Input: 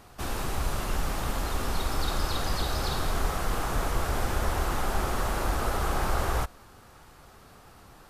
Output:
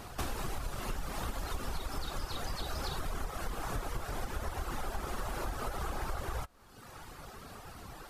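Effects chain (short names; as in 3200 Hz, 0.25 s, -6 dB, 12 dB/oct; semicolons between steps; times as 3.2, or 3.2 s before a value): reverb removal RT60 0.89 s; compressor 10:1, threshold -39 dBFS, peak gain reduction 18 dB; flange 0.64 Hz, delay 0.2 ms, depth 9 ms, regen -73%; gain +10.5 dB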